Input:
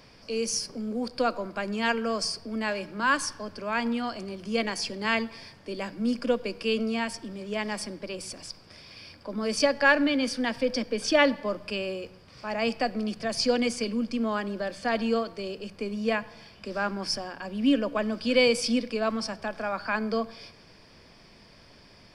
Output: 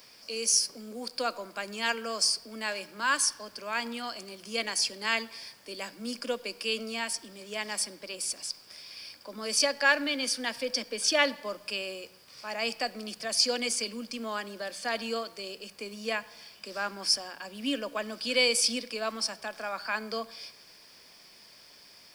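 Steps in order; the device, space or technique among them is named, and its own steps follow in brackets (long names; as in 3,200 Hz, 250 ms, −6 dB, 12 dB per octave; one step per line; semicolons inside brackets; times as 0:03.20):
turntable without a phono preamp (RIAA equalisation recording; white noise bed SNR 33 dB)
level −4 dB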